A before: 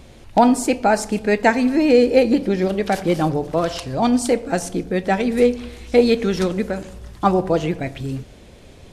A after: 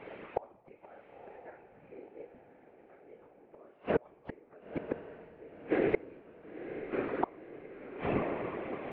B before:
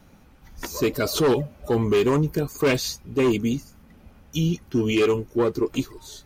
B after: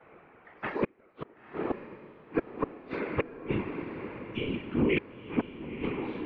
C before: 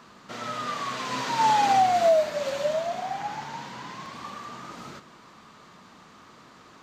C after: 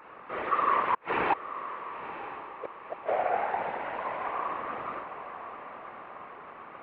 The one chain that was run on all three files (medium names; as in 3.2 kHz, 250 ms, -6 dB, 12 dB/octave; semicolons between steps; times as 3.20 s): two-slope reverb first 0.35 s, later 3.9 s, from -21 dB, DRR -4 dB; mistuned SSB -85 Hz 380–2500 Hz; inverted gate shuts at -15 dBFS, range -42 dB; whisper effect; on a send: echo that smears into a reverb 983 ms, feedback 47%, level -11 dB